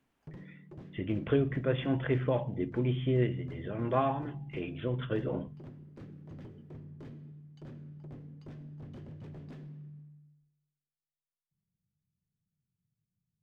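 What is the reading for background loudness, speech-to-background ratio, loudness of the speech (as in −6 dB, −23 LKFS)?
−48.5 LKFS, 16.0 dB, −32.5 LKFS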